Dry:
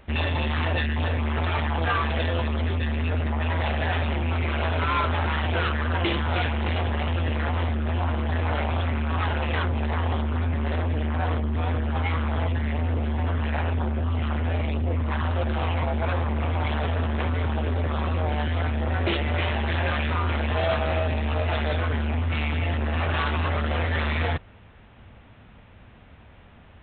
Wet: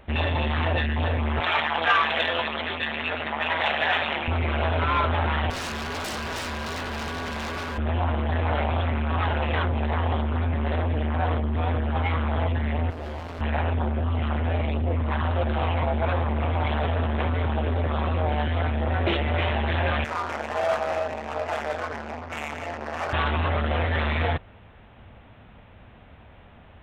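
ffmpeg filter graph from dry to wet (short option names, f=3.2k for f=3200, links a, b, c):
-filter_complex "[0:a]asettb=1/sr,asplit=3[a][b][c];[a]atrim=end=1.404[d];[b]atrim=start=1.4:end=4.28,asetpts=PTS-STARTPTS,afade=t=in:d=0.004:c=qsin,afade=t=out:st=2.876:d=0.004:c=qsin,highpass=140,tiltshelf=f=660:g=-8.5[e];[c]atrim=start=4.276[f];[d][e]acrossfade=d=0.004:c1=hsin:c2=qsin[g];[g][f]acrossfade=d=0.004:c1=qsin:c2=hsin,asettb=1/sr,asplit=3[h][i][j];[h]atrim=end=5.504[k];[i]atrim=start=5.5:end=7.78,asetpts=PTS-STARTPTS,afade=t=in:d=0.004:c=qsin,afade=t=out:st=2.276:d=0.004:c=qsin,highpass=55,aeval=exprs='val(0)+0.0251*sin(2*PI*1300*n/s)':c=same,aeval=exprs='0.0447*(abs(mod(val(0)/0.0447+3,4)-2)-1)':c=same[l];[j]atrim=start=7.776[m];[k][l]acrossfade=d=0.004:c1=hsin:c2=qsin[n];[n][m]acrossfade=d=0.004:c1=qsin:c2=hsin,asettb=1/sr,asplit=3[o][p][q];[o]atrim=end=12.904[r];[p]atrim=start=12.9:end=13.41,asetpts=PTS-STARTPTS,afade=t=in:d=0.004:c=qsin,afade=t=out:st=0.506:d=0.004:c=qsin,volume=33dB,asoftclip=hard,volume=-33dB,asplit=2[s][t];[t]adelay=17,volume=-5dB[u];[s][u]amix=inputs=2:normalize=0,atrim=end_sample=22491[v];[q]atrim=start=13.406[w];[r][v]acrossfade=d=0.004:c1=hsin:c2=qsin[x];[x][w]acrossfade=d=0.004:c1=qsin:c2=hsin,asettb=1/sr,asplit=3[y][z][aa];[y]atrim=end=20.044[ab];[z]atrim=start=20.04:end=23.13,asetpts=PTS-STARTPTS,afade=t=in:d=0.004:c=qsin,afade=t=out:st=3.086:d=0.004:c=qsin,bandpass=f=1.2k:t=q:w=0.55,adynamicsmooth=sensitivity=4.5:basefreq=930[ac];[aa]atrim=start=23.126[ad];[ab][ac]acrossfade=d=0.004:c1=hsin:c2=qsin[ae];[ae][ad]acrossfade=d=0.004:c1=qsin:c2=hsin,equalizer=f=690:t=o:w=1.1:g=3.5,acontrast=25,volume=-5dB"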